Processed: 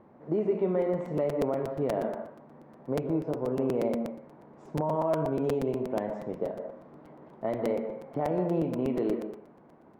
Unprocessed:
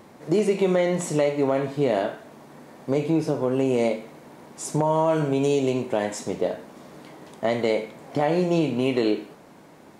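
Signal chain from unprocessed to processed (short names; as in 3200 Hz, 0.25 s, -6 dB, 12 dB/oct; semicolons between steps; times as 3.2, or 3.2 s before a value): LPF 1200 Hz 12 dB/oct; on a send at -7 dB: reverb RT60 0.45 s, pre-delay 0.14 s; on the sum: crackling interface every 0.12 s, samples 256, repeat, from 0.81; gain -7 dB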